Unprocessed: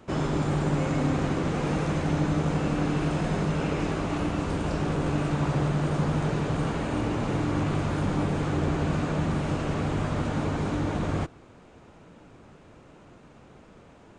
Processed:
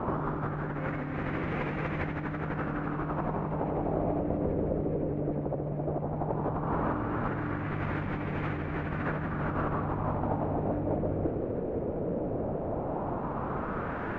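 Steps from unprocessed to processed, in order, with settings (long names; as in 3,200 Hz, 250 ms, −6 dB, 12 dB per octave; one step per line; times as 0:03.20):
compressor whose output falls as the input rises −38 dBFS, ratio −1
auto-filter low-pass sine 0.15 Hz 510–2,100 Hz
delay with a high-pass on its return 831 ms, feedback 70%, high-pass 1,500 Hz, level −15.5 dB
level +5.5 dB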